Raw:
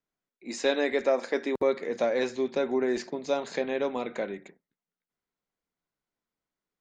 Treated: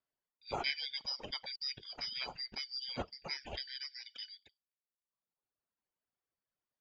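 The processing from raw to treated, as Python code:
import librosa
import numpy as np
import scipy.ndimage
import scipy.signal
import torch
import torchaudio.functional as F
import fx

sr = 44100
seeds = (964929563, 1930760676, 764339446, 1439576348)

y = fx.band_shuffle(x, sr, order='4321')
y = fx.highpass(y, sr, hz=880.0, slope=6, at=(3.63, 4.33))
y = fx.dereverb_blind(y, sr, rt60_s=1.6)
y = scipy.signal.sosfilt(scipy.signal.butter(2, 1400.0, 'lowpass', fs=sr, output='sos'), y)
y = y * 10.0 ** (7.5 / 20.0)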